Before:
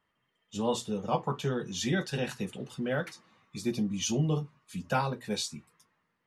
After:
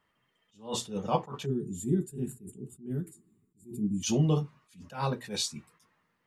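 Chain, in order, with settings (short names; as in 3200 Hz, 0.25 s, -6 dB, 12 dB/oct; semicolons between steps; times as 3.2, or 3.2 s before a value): spectral gain 1.46–4.04, 440–6900 Hz -28 dB; attack slew limiter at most 170 dB/s; gain +3 dB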